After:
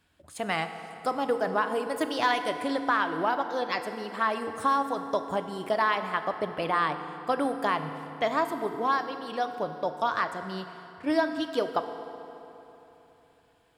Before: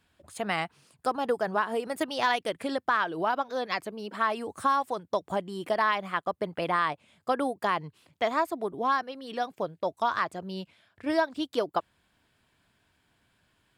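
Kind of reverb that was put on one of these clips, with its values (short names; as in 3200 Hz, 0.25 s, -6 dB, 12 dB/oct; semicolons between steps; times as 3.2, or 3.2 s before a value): FDN reverb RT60 3.4 s, high-frequency decay 0.65×, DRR 7.5 dB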